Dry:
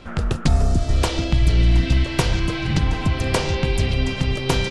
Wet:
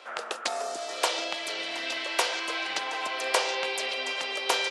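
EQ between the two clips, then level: high-pass 520 Hz 24 dB/octave; -1.0 dB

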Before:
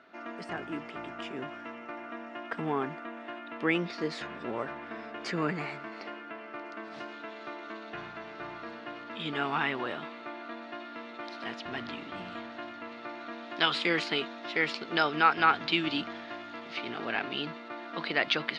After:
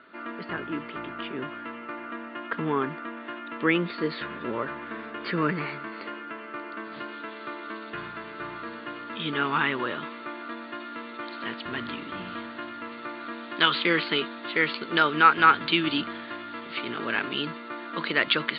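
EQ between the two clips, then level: rippled Chebyshev low-pass 4.6 kHz, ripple 3 dB; distance through air 110 m; peaking EQ 740 Hz -14.5 dB 0.32 oct; +8.0 dB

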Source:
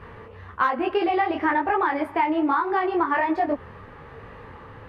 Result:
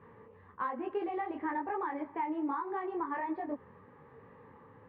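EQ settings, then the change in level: distance through air 250 m; cabinet simulation 160–3700 Hz, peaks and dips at 350 Hz -4 dB, 670 Hz -10 dB, 1.4 kHz -8 dB; peaking EQ 2.8 kHz -10 dB 1 oct; -8.0 dB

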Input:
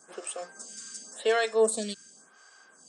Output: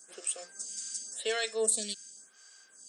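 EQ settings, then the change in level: tilt EQ +2.5 dB/octave; peaking EQ 1 kHz -10 dB 1.3 oct; -3.0 dB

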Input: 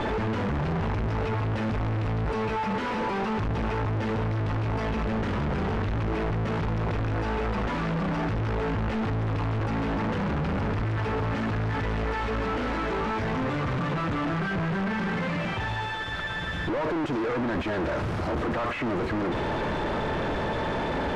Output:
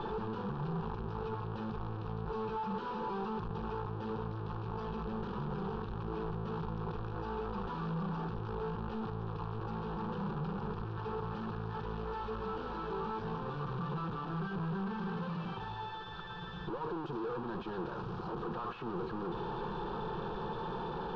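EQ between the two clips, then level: low-pass 4.4 kHz 24 dB/octave; static phaser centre 410 Hz, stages 8; -7.5 dB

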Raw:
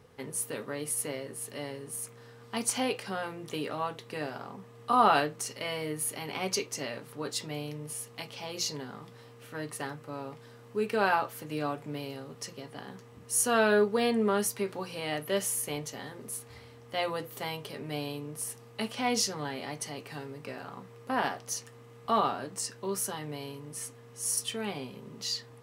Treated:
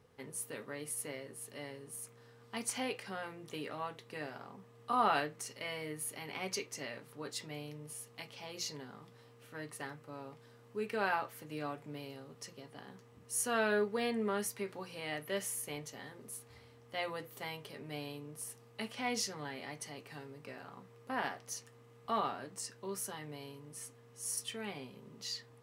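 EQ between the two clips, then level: dynamic bell 2 kHz, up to +5 dB, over -50 dBFS, Q 2.3; -8.0 dB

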